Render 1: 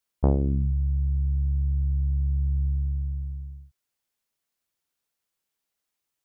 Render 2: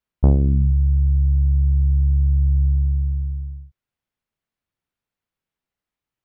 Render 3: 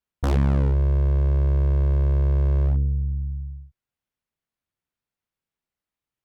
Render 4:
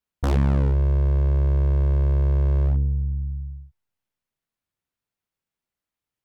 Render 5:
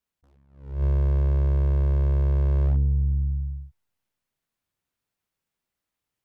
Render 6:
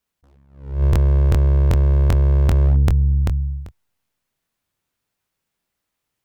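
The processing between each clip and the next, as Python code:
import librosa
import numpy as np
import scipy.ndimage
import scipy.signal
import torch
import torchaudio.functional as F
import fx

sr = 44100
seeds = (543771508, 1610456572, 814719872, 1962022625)

y1 = fx.bass_treble(x, sr, bass_db=8, treble_db=-13)
y2 = 10.0 ** (-12.5 / 20.0) * (np.abs((y1 / 10.0 ** (-12.5 / 20.0) + 3.0) % 4.0 - 2.0) - 1.0)
y2 = fx.cheby_harmonics(y2, sr, harmonics=(3, 4, 5), levels_db=(-15, -24, -23), full_scale_db=-12.5)
y2 = F.gain(torch.from_numpy(y2), -1.5).numpy()
y3 = fx.comb_fb(y2, sr, f0_hz=100.0, decay_s=1.7, harmonics='all', damping=0.0, mix_pct=40)
y3 = F.gain(torch.from_numpy(y3), 4.5).numpy()
y4 = fx.rider(y3, sr, range_db=4, speed_s=0.5)
y4 = fx.attack_slew(y4, sr, db_per_s=110.0)
y4 = F.gain(torch.from_numpy(y4), -1.0).numpy()
y5 = fx.buffer_crackle(y4, sr, first_s=0.91, period_s=0.39, block=1024, kind='repeat')
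y5 = F.gain(torch.from_numpy(y5), 6.5).numpy()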